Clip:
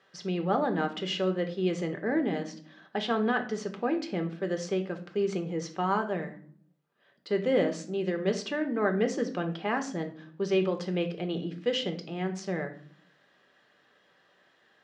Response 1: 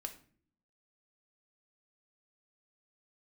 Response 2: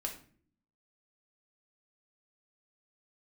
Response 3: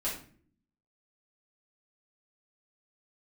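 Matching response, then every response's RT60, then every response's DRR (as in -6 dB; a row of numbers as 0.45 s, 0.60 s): 1; no single decay rate, no single decay rate, no single decay rate; 5.5 dB, 1.0 dB, -8.5 dB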